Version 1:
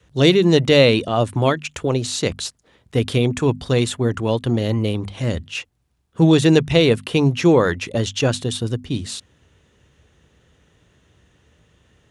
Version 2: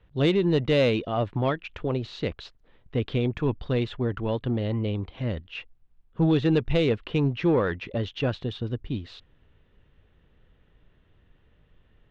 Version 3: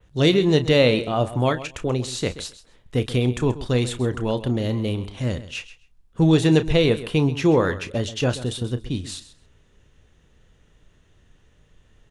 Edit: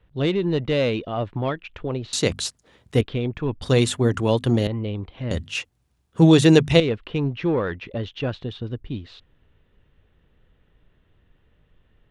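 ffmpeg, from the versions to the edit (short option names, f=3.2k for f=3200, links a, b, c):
-filter_complex "[0:a]asplit=3[a][b][c];[1:a]asplit=4[d][e][f][g];[d]atrim=end=2.132[h];[a]atrim=start=2.128:end=3.012[i];[e]atrim=start=3.008:end=3.622[j];[b]atrim=start=3.618:end=4.672[k];[f]atrim=start=4.668:end=5.312[l];[c]atrim=start=5.308:end=6.802[m];[g]atrim=start=6.798[n];[h][i]acrossfade=d=0.004:c1=hsin:c2=hsin[o];[o][j]acrossfade=d=0.004:c1=hsin:c2=hsin[p];[p][k]acrossfade=d=0.004:c1=hsin:c2=hsin[q];[q][l]acrossfade=d=0.004:c1=hsin:c2=hsin[r];[r][m]acrossfade=d=0.004:c1=hsin:c2=hsin[s];[s][n]acrossfade=d=0.004:c1=hsin:c2=hsin"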